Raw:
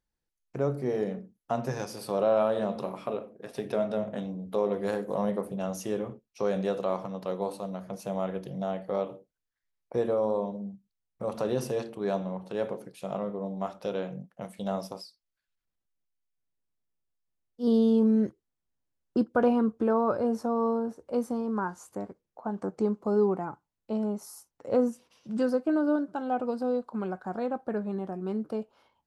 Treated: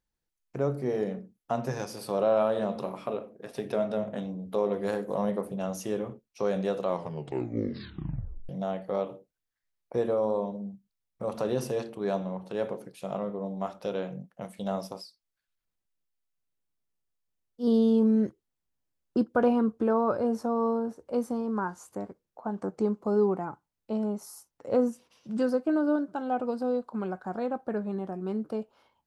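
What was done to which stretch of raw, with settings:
6.87 s: tape stop 1.62 s

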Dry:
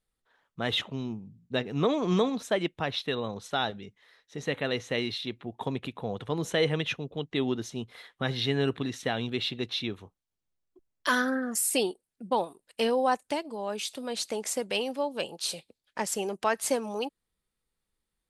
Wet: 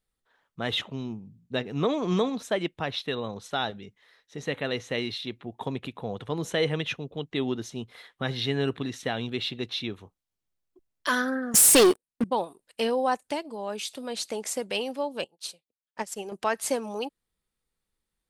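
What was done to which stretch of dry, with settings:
11.54–12.24 s: waveshaping leveller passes 5
15.24–16.32 s: upward expansion 2.5:1, over -46 dBFS

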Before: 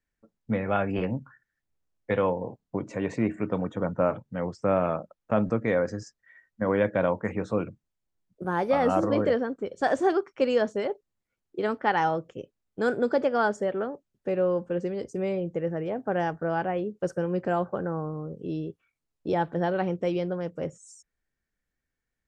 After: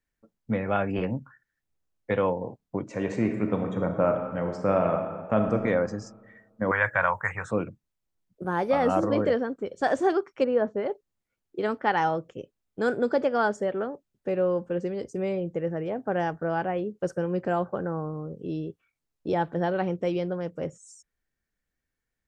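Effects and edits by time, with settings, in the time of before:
2.88–5.55 s: reverb throw, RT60 1.6 s, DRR 4.5 dB
6.71–7.51 s: FFT filter 150 Hz 0 dB, 220 Hz -24 dB, 400 Hz -14 dB, 1 kHz +8 dB, 1.7 kHz +12 dB, 4.4 kHz -7 dB, 7.7 kHz +10 dB
10.43–10.85 s: low-pass 1.2 kHz -> 1.9 kHz

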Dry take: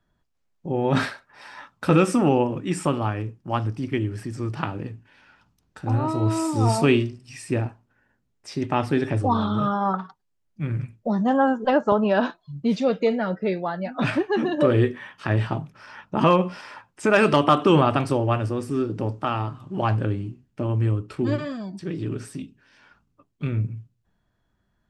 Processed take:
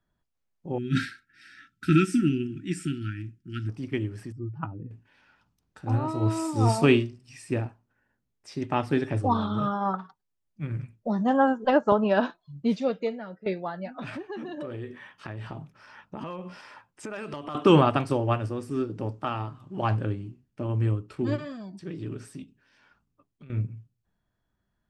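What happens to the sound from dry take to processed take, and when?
0.78–3.69 s: brick-wall FIR band-stop 380–1300 Hz
4.32–4.91 s: spectral contrast enhancement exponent 2
12.67–13.46 s: fade out, to -12 dB
13.96–17.55 s: compression, threshold -26 dBFS
22.43–23.50 s: compression, threshold -39 dBFS
whole clip: upward expansion 1.5:1, over -28 dBFS

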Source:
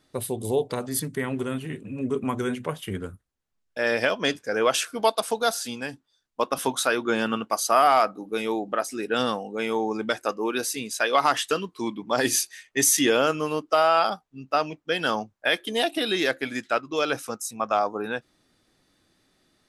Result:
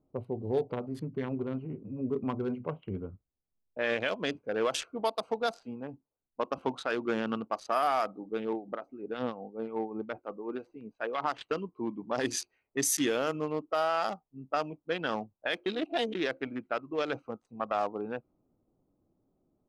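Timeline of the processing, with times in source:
2.71–4.11 s: resonant high shelf 4.1 kHz -8.5 dB, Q 3
8.53–11.41 s: harmonic tremolo 5.5 Hz, crossover 1.6 kHz
15.66–16.15 s: reverse
whole clip: local Wiener filter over 25 samples; level-controlled noise filter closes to 930 Hz, open at -17 dBFS; peak limiter -13.5 dBFS; trim -4.5 dB

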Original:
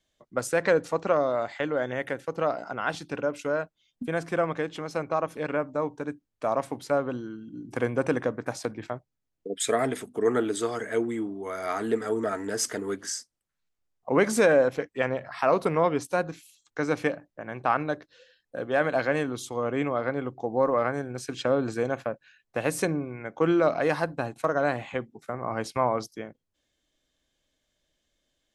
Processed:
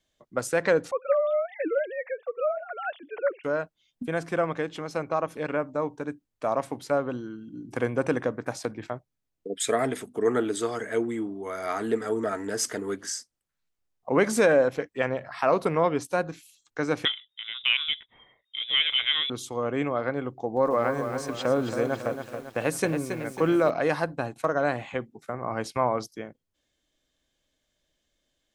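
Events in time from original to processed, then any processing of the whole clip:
0.91–3.44 s: formants replaced by sine waves
17.05–19.30 s: frequency inversion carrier 3.7 kHz
20.29–23.70 s: bit-crushed delay 275 ms, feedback 55%, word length 8-bit, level -7.5 dB

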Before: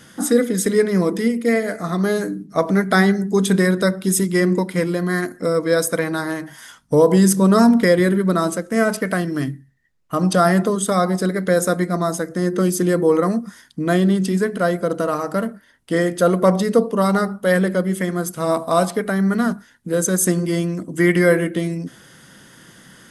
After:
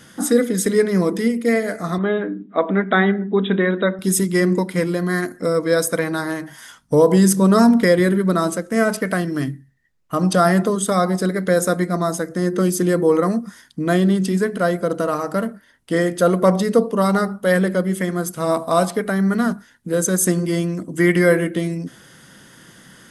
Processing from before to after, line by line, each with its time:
1.98–3.99 s: brick-wall FIR band-pass 180–3900 Hz

